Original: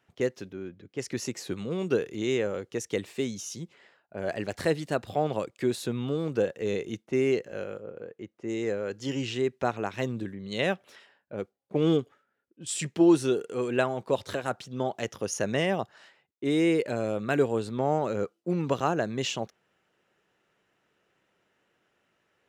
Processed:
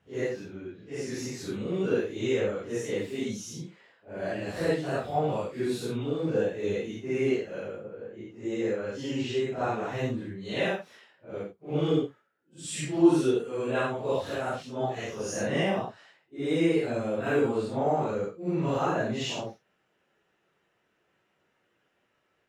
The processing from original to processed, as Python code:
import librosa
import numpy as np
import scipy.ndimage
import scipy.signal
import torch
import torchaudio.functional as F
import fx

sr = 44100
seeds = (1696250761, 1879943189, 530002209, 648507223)

y = fx.phase_scramble(x, sr, seeds[0], window_ms=200)
y = fx.high_shelf(y, sr, hz=5100.0, db=-4.5)